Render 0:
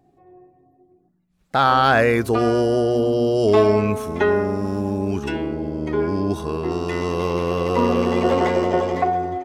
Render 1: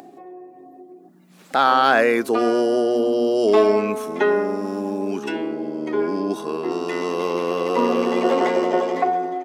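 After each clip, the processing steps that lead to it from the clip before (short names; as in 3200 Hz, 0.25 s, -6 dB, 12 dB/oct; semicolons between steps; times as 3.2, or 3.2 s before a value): HPF 220 Hz 24 dB/oct; upward compressor, threshold -30 dBFS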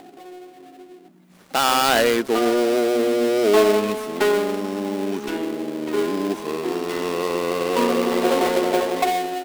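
switching dead time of 0.2 ms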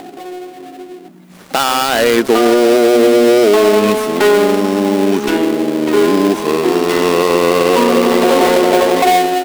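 maximiser +13 dB; gain -1 dB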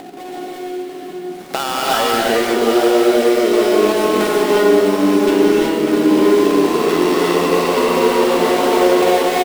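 compressor 3:1, threshold -16 dBFS, peak gain reduction 7.5 dB; on a send: echo 0.894 s -9 dB; on the sum: non-linear reverb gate 0.39 s rising, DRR -4 dB; gain -2.5 dB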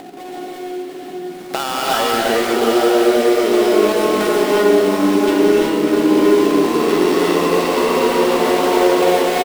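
echo 0.709 s -9 dB; gain -1 dB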